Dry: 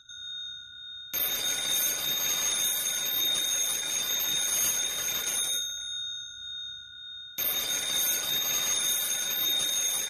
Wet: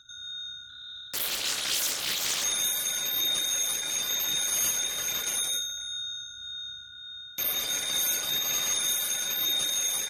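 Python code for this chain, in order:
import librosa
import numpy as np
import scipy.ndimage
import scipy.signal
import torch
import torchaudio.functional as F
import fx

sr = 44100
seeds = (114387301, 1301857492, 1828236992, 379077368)

y = fx.doppler_dist(x, sr, depth_ms=0.81, at=(0.69, 2.44))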